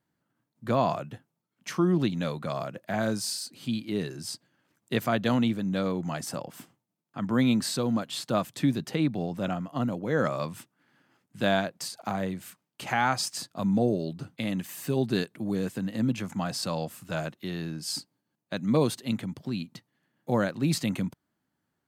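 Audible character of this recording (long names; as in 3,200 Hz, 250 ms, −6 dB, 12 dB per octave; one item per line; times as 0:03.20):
background noise floor −82 dBFS
spectral slope −5.5 dB per octave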